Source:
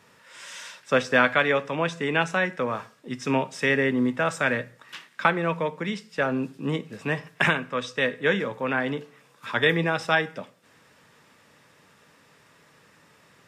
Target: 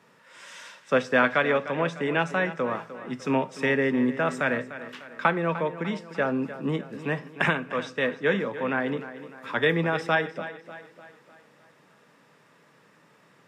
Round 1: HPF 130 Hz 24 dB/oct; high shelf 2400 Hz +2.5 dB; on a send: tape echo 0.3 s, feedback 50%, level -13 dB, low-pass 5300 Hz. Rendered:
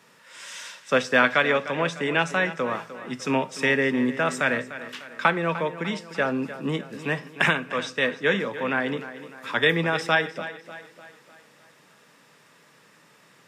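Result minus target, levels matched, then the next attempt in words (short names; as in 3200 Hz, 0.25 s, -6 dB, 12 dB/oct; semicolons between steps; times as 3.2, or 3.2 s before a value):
4000 Hz band +4.5 dB
HPF 130 Hz 24 dB/oct; high shelf 2400 Hz -7.5 dB; on a send: tape echo 0.3 s, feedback 50%, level -13 dB, low-pass 5300 Hz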